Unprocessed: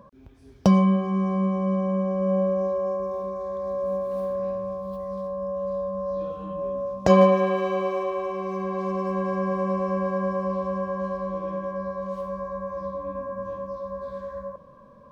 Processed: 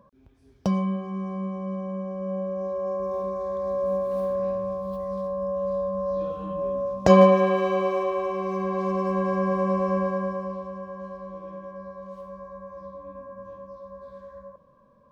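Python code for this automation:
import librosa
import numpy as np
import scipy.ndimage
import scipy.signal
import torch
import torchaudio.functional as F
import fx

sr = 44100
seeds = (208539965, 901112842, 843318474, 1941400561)

y = fx.gain(x, sr, db=fx.line((2.46, -7.0), (3.17, 1.5), (9.98, 1.5), (10.72, -8.5)))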